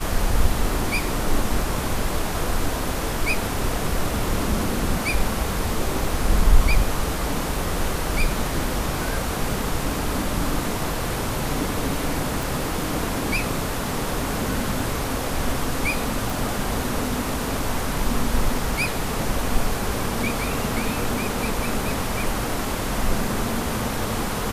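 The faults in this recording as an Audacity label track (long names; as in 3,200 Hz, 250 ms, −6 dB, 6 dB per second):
12.430000	12.430000	click
16.300000	16.300000	click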